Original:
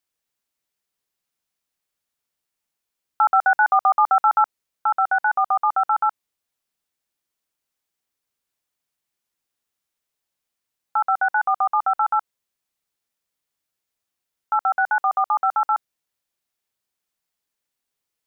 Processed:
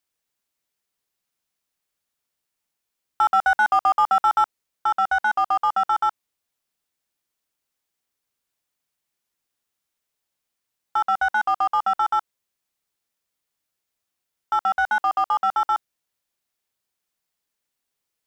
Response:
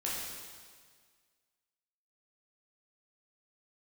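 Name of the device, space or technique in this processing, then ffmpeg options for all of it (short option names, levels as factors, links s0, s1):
parallel distortion: -filter_complex "[0:a]asplit=2[s0][s1];[s1]asoftclip=type=hard:threshold=0.0708,volume=0.562[s2];[s0][s2]amix=inputs=2:normalize=0,volume=0.708"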